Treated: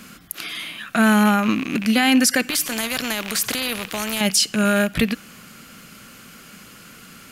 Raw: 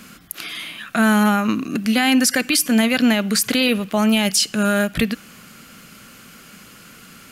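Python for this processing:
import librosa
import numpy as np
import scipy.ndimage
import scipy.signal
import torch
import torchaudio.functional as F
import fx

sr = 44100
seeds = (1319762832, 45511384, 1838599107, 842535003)

y = fx.rattle_buzz(x, sr, strikes_db=-32.0, level_db=-18.0)
y = fx.spectral_comp(y, sr, ratio=2.0, at=(2.5, 4.21))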